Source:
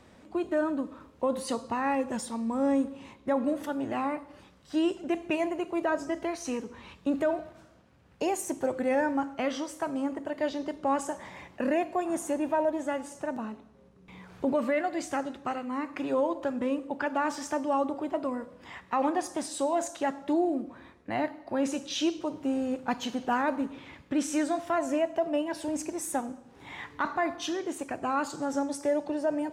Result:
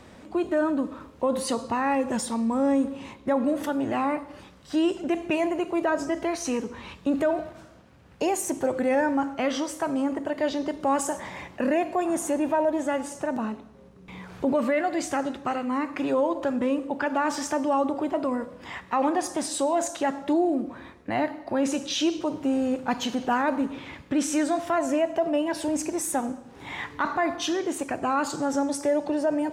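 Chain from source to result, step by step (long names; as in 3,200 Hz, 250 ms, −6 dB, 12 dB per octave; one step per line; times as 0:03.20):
0:10.80–0:11.20: high-shelf EQ 8,700 Hz +10 dB
in parallel at +2 dB: brickwall limiter −28 dBFS, peak gain reduction 10 dB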